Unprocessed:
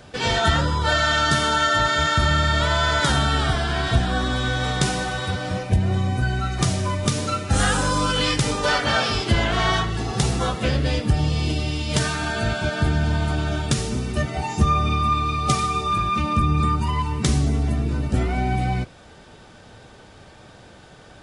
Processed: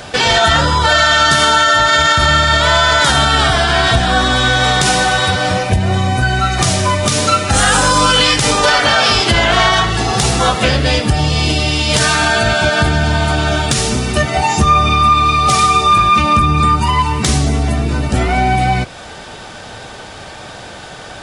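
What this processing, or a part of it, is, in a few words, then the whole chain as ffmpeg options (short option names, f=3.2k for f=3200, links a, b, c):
mastering chain: -af "equalizer=f=720:t=o:w=0.71:g=3.5,acompressor=threshold=-28dB:ratio=1.5,asoftclip=type=tanh:threshold=-10.5dB,tiltshelf=f=750:g=-4,alimiter=level_in=15dB:limit=-1dB:release=50:level=0:latency=1,volume=-1dB"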